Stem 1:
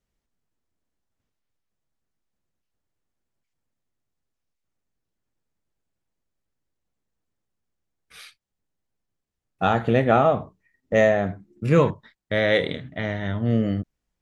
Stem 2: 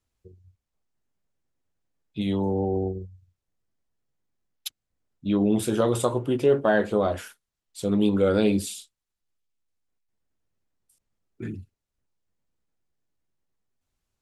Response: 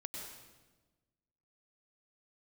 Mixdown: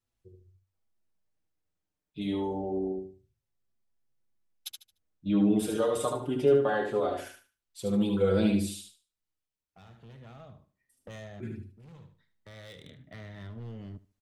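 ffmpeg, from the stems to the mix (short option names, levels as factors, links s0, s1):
-filter_complex "[0:a]acrossover=split=150|3000[s0][s1][s2];[s1]acompressor=threshold=0.0251:ratio=6[s3];[s0][s3][s2]amix=inputs=3:normalize=0,asoftclip=type=hard:threshold=0.0473,adelay=150,volume=0.251,asplit=2[s4][s5];[s5]volume=0.119[s6];[1:a]asplit=2[s7][s8];[s8]adelay=5.5,afreqshift=-0.26[s9];[s7][s9]amix=inputs=2:normalize=1,volume=0.708,asplit=3[s10][s11][s12];[s11]volume=0.562[s13];[s12]apad=whole_len=633383[s14];[s4][s14]sidechaincompress=threshold=0.00251:ratio=3:attack=5.9:release=1300[s15];[s6][s13]amix=inputs=2:normalize=0,aecho=0:1:74|148|222|296:1|0.25|0.0625|0.0156[s16];[s15][s10][s16]amix=inputs=3:normalize=0,bandreject=f=7000:w=23"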